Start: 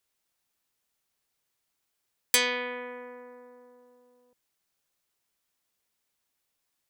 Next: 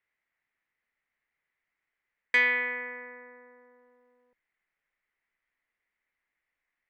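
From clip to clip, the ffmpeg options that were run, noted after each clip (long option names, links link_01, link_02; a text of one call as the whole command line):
ffmpeg -i in.wav -af "lowpass=frequency=2000:width_type=q:width=6,asubboost=boost=3:cutoff=51,volume=-5dB" out.wav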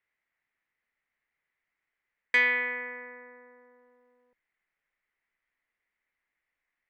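ffmpeg -i in.wav -af anull out.wav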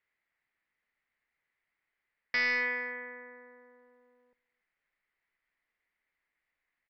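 ffmpeg -i in.wav -af "aresample=11025,volume=26.5dB,asoftclip=hard,volume=-26.5dB,aresample=44100,aecho=1:1:280:0.0631" out.wav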